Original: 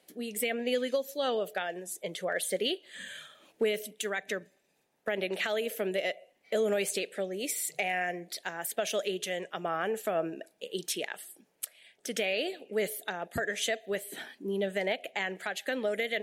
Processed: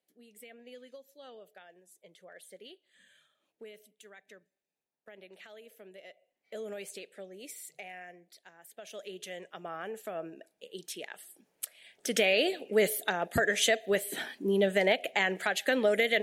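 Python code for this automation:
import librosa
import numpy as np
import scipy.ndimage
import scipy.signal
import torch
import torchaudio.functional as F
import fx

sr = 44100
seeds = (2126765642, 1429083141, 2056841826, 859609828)

y = fx.gain(x, sr, db=fx.line((6.0, -20.0), (6.58, -12.0), (7.56, -12.0), (8.62, -19.5), (9.24, -8.0), (10.91, -8.0), (12.2, 5.0)))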